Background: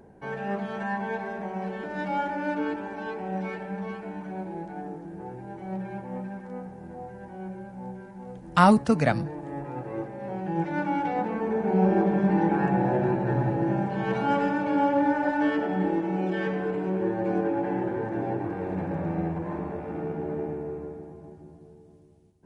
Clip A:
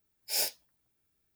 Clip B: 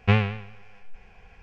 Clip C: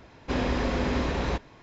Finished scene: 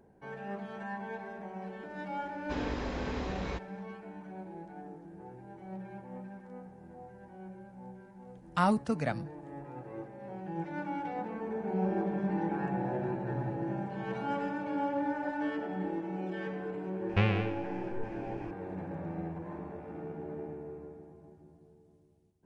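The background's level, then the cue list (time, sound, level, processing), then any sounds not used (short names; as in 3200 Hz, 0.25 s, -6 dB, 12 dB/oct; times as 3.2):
background -9.5 dB
2.21 add C -9.5 dB
17.09 add B -0.5 dB + compressor 2:1, threshold -27 dBFS
not used: A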